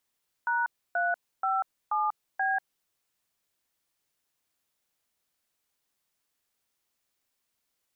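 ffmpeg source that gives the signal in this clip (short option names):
-f lavfi -i "aevalsrc='0.0447*clip(min(mod(t,0.481),0.191-mod(t,0.481))/0.002,0,1)*(eq(floor(t/0.481),0)*(sin(2*PI*941*mod(t,0.481))+sin(2*PI*1477*mod(t,0.481)))+eq(floor(t/0.481),1)*(sin(2*PI*697*mod(t,0.481))+sin(2*PI*1477*mod(t,0.481)))+eq(floor(t/0.481),2)*(sin(2*PI*770*mod(t,0.481))+sin(2*PI*1336*mod(t,0.481)))+eq(floor(t/0.481),3)*(sin(2*PI*852*mod(t,0.481))+sin(2*PI*1209*mod(t,0.481)))+eq(floor(t/0.481),4)*(sin(2*PI*770*mod(t,0.481))+sin(2*PI*1633*mod(t,0.481))))':d=2.405:s=44100"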